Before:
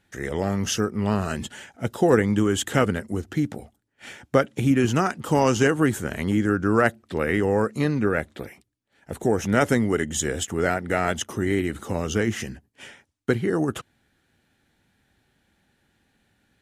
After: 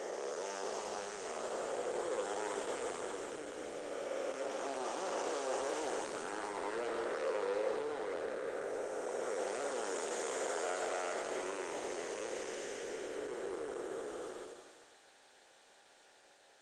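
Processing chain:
spectrum smeared in time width 915 ms
hard clipping −27.5 dBFS, distortion −7 dB
Butterworth low-pass 8,800 Hz 48 dB per octave
reversed playback
downward compressor 4 to 1, threshold −46 dBFS, peak gain reduction 14 dB
reversed playback
high-pass filter 490 Hz 24 dB per octave
parametric band 2,000 Hz −9.5 dB 2.1 octaves
delay with a high-pass on its return 135 ms, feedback 61%, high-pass 3,000 Hz, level −7.5 dB
on a send at −8 dB: convolution reverb RT60 0.65 s, pre-delay 47 ms
on the sum: level +16 dB
Opus 20 kbit/s 48,000 Hz

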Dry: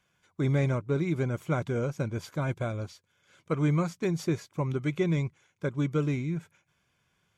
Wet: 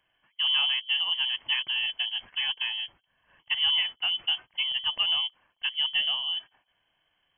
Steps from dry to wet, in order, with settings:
voice inversion scrambler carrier 3,200 Hz

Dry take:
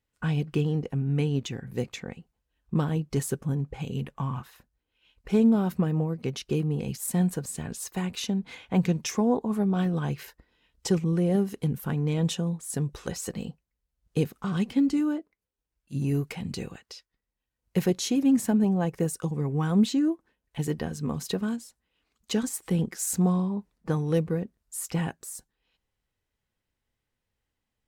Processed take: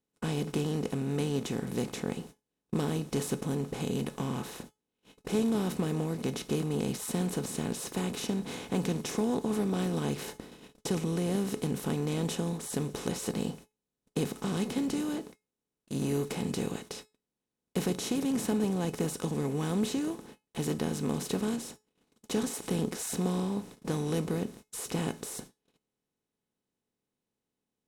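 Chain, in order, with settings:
compressor on every frequency bin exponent 0.4
noise gate −35 dBFS, range −35 dB
tuned comb filter 430 Hz, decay 0.24 s, harmonics all, mix 60%
level −3.5 dB

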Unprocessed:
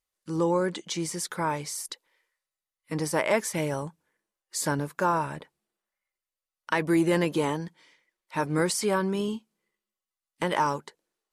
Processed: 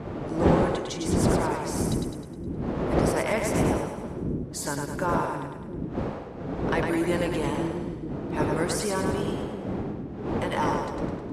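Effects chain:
wind on the microphone 360 Hz −25 dBFS
high-pass filter 45 Hz
parametric band 79 Hz −3.5 dB 2.5 octaves
echo with a time of its own for lows and highs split 370 Hz, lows 668 ms, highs 104 ms, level −4 dB
level −3.5 dB

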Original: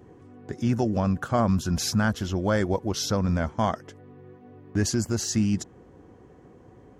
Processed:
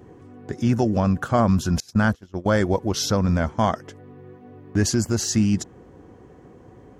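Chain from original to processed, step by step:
0:01.80–0:02.46: noise gate −24 dBFS, range −28 dB
level +4 dB

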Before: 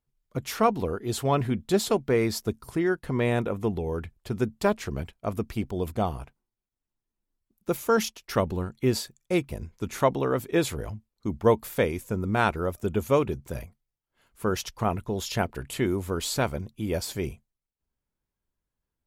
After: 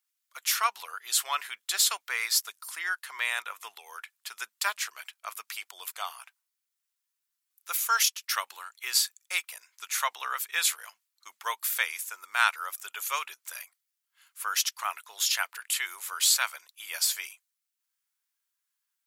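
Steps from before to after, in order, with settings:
high-pass filter 1,200 Hz 24 dB per octave
high-shelf EQ 3,900 Hz +8 dB
level +3.5 dB

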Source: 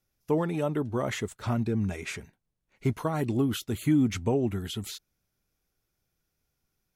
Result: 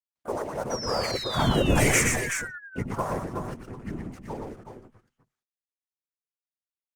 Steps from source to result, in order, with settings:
source passing by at 0:01.84, 24 m/s, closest 2 metres
mains-hum notches 60/120/180/240/300 Hz
low-pass that shuts in the quiet parts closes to 1,500 Hz, open at −38.5 dBFS
octave-band graphic EQ 125/250/500/1,000/2,000/4,000/8,000 Hz +7/−9/+7/+10/+7/−11/+4 dB
leveller curve on the samples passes 3
high shelf with overshoot 4,800 Hz +9 dB, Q 1.5
random phases in short frames
pitch-shifted copies added +5 semitones −12 dB
sound drawn into the spectrogram fall, 0:00.70–0:02.47, 1,400–5,900 Hz −41 dBFS
in parallel at −4 dB: soft clipping −22 dBFS, distortion −14 dB
on the sum: multi-tap delay 90/118/127/370/378 ms −18.5/−4.5/−19/−9/−14.5 dB
Opus 32 kbit/s 48,000 Hz

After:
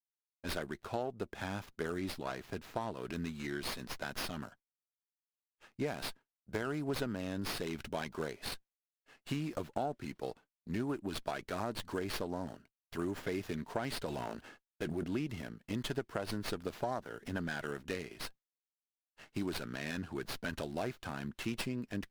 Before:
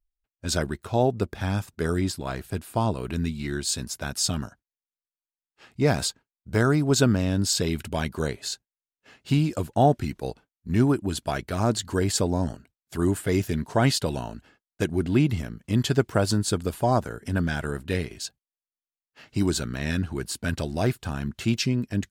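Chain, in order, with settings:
0:14.06–0:15.04: transient designer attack −5 dB, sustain +10 dB
high-pass filter 300 Hz 6 dB per octave
downward expander −48 dBFS
downward compressor 6 to 1, threshold −28 dBFS, peak gain reduction 12.5 dB
windowed peak hold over 5 samples
level −4.5 dB

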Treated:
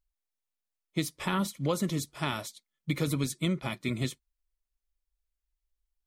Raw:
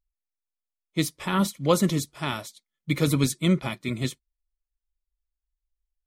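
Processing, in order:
downward compressor 5 to 1, threshold −26 dBFS, peak gain reduction 10.5 dB

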